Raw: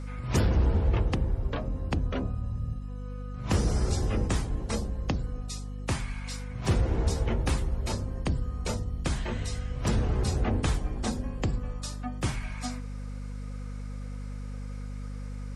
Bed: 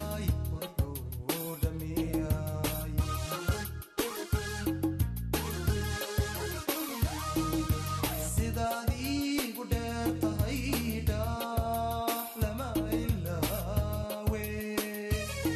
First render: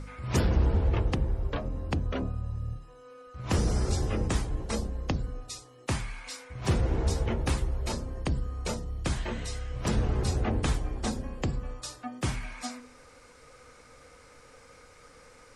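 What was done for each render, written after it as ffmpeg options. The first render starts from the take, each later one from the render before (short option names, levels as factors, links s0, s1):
-af "bandreject=f=50:t=h:w=4,bandreject=f=100:t=h:w=4,bandreject=f=150:t=h:w=4,bandreject=f=200:t=h:w=4,bandreject=f=250:t=h:w=4"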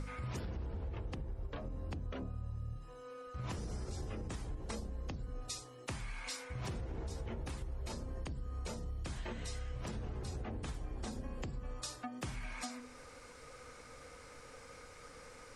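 -af "alimiter=level_in=1.33:limit=0.0631:level=0:latency=1:release=326,volume=0.75,acompressor=threshold=0.0126:ratio=6"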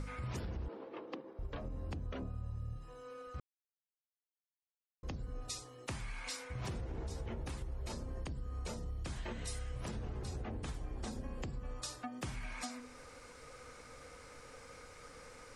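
-filter_complex "[0:a]asettb=1/sr,asplit=3[s0][s1][s2];[s0]atrim=end=0.684[s3];[s1]atrim=start=0.68:end=1.39,asetpts=PTS-STARTPTS,afade=t=in:d=0.004:c=qsin,afade=t=out:st=0.706:d=0.004:c=qsin,highpass=f=250:w=0.5412,highpass=f=250:w=1.3066,equalizer=f=310:t=q:w=4:g=6,equalizer=f=510:t=q:w=4:g=5,equalizer=f=1100:t=q:w=4:g=6,lowpass=f=5000:w=0.5412,lowpass=f=5000:w=1.3066[s4];[s2]atrim=start=1.386[s5];[s3][s4]acrossfade=d=0.004:c1=hsin:c2=qsin[s6];[s6][s5]acrossfade=d=0.004:c1=qsin:c2=hsin,asettb=1/sr,asplit=3[s7][s8][s9];[s7]atrim=end=9.474[s10];[s8]atrim=start=9.47:end=9.87,asetpts=PTS-STARTPTS,afade=t=in:d=0.004:c=qsin,afade=t=out:st=0.396:d=0.004:c=qsin,equalizer=f=10000:w=2:g=12.5[s11];[s9]atrim=start=9.866[s12];[s10][s11]acrossfade=d=0.004:c1=hsin:c2=qsin[s13];[s13][s12]acrossfade=d=0.004:c1=qsin:c2=hsin,asplit=3[s14][s15][s16];[s14]atrim=end=3.4,asetpts=PTS-STARTPTS,afade=t=out:st=3.396:d=0.004:c=hsin[s17];[s15]atrim=start=3.4:end=5.03,asetpts=PTS-STARTPTS,volume=0[s18];[s16]atrim=start=5.03,asetpts=PTS-STARTPTS,afade=t=in:d=0.004:c=hsin[s19];[s17][s18][s19]concat=n=3:v=0:a=1"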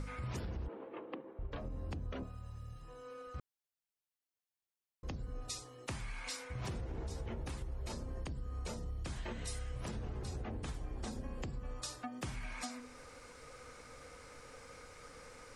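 -filter_complex "[0:a]asettb=1/sr,asplit=3[s0][s1][s2];[s0]atrim=end=0.674[s3];[s1]atrim=start=0.67:end=1.52,asetpts=PTS-STARTPTS,afade=t=in:d=0.004:c=qsin,afade=t=out:st=0.846:d=0.004:c=qsin,lowpass=f=3100:w=0.5412,lowpass=f=3100:w=1.3066[s4];[s2]atrim=start=1.516[s5];[s3][s4]acrossfade=d=0.004:c1=hsin:c2=qsin[s6];[s6][s5]acrossfade=d=0.004:c1=qsin:c2=hsin,asettb=1/sr,asplit=3[s7][s8][s9];[s7]atrim=end=2.234[s10];[s8]atrim=start=2.23:end=2.82,asetpts=PTS-STARTPTS,afade=t=in:d=0.004:c=qsin,afade=t=out:st=0.586:d=0.004:c=qsin,tiltshelf=f=880:g=-6[s11];[s9]atrim=start=2.816[s12];[s10][s11]acrossfade=d=0.004:c1=hsin:c2=qsin[s13];[s13][s12]acrossfade=d=0.004:c1=qsin:c2=hsin"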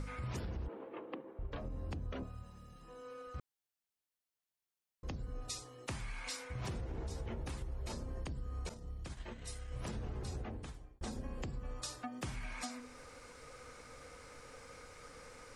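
-filter_complex "[0:a]asettb=1/sr,asplit=3[s0][s1][s2];[s0]atrim=end=2.434[s3];[s1]atrim=start=2.43:end=3.07,asetpts=PTS-STARTPTS,afade=t=in:d=0.004:c=qsin,afade=t=out:st=0.636:d=0.004:c=qsin,lowshelf=f=150:t=q:w=3:g=-6.5[s4];[s2]atrim=start=3.066[s5];[s3][s4]acrossfade=d=0.004:c1=hsin:c2=qsin[s6];[s6][s5]acrossfade=d=0.004:c1=qsin:c2=hsin,asettb=1/sr,asplit=3[s7][s8][s9];[s7]atrim=end=8.694[s10];[s8]atrim=start=8.69:end=9.72,asetpts=PTS-STARTPTS,afade=t=in:d=0.004:c=qsin,afade=t=out:st=1.026:d=0.004:c=qsin,agate=range=0.0224:threshold=0.0141:ratio=3:release=100:detection=peak[s11];[s9]atrim=start=9.716[s12];[s10][s11]acrossfade=d=0.004:c1=hsin:c2=qsin[s13];[s13][s12]acrossfade=d=0.004:c1=qsin:c2=hsin,asplit=2[s14][s15];[s14]atrim=end=11.01,asetpts=PTS-STARTPTS,afade=t=out:st=10.38:d=0.63[s16];[s15]atrim=start=11.01,asetpts=PTS-STARTPTS,afade=t=in:d=0.004:c=hsin[s17];[s16][s17]concat=n=2:v=0:a=1"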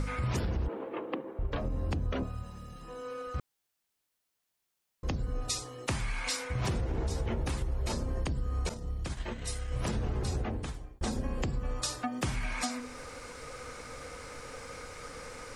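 -af "volume=2.99"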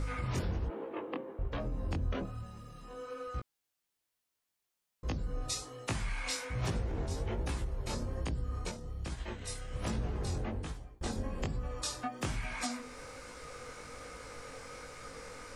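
-af "flanger=delay=17.5:depth=5.3:speed=1.2"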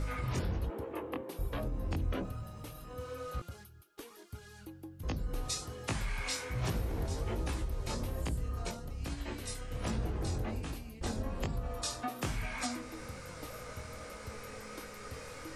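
-filter_complex "[1:a]volume=0.141[s0];[0:a][s0]amix=inputs=2:normalize=0"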